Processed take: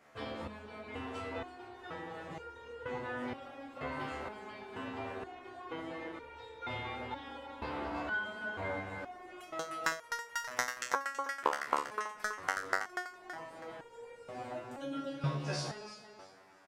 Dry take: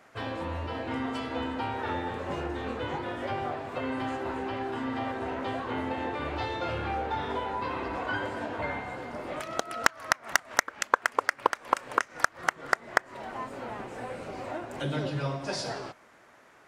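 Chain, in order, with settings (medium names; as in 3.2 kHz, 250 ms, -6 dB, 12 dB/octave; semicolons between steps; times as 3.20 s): feedback delay 326 ms, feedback 22%, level -8 dB; resonator arpeggio 2.1 Hz 73–470 Hz; trim +3 dB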